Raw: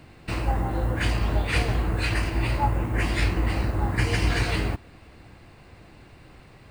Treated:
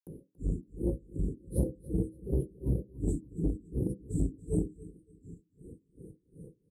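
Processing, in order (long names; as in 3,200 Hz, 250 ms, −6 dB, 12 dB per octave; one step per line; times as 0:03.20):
elliptic low-pass filter 12,000 Hz
reverb reduction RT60 0.64 s
Chebyshev band-stop filter 470–8,400 Hz, order 5
parametric band 77 Hz −5.5 dB 0.68 octaves
upward compression, threshold −43 dBFS
granular cloud 253 ms, grains 2.7 per second, pitch spread up and down by 3 semitones
notch comb filter 640 Hz
repeating echo 282 ms, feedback 28%, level −19.5 dB
on a send at −11 dB: convolution reverb RT60 0.25 s, pre-delay 3 ms
on the sum: saturating transformer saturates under 160 Hz
level +5 dB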